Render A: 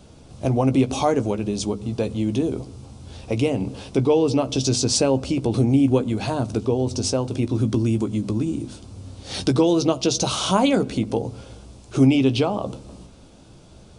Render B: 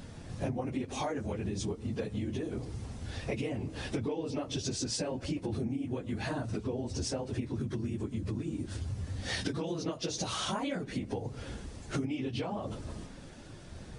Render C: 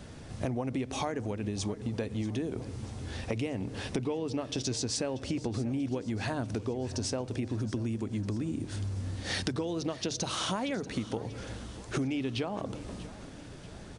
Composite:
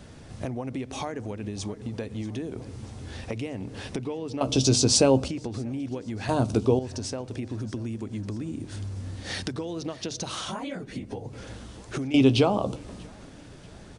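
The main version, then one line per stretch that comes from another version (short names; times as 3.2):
C
4.41–5.28 from A
6.29–6.79 from A
10.41–11.33 from B
12.14–12.76 from A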